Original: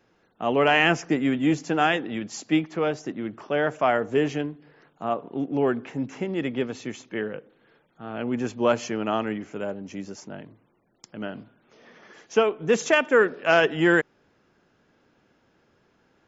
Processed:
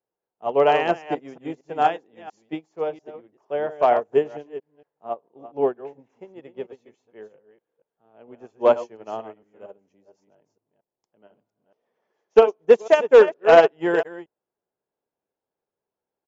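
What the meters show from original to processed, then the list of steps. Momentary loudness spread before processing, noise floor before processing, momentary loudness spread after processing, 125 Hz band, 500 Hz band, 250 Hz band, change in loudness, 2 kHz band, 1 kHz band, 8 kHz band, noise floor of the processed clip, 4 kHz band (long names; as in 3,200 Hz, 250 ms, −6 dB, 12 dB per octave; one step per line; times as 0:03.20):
17 LU, −66 dBFS, 22 LU, −10.5 dB, +5.5 dB, −7.5 dB, +5.0 dB, −5.5 dB, +3.5 dB, can't be measured, below −85 dBFS, −5.5 dB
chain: delay that plays each chunk backwards 230 ms, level −6 dB
flat-topped bell 620 Hz +10 dB
gain into a clipping stage and back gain 3.5 dB
downsampling to 16,000 Hz
expander for the loud parts 2.5 to 1, over −27 dBFS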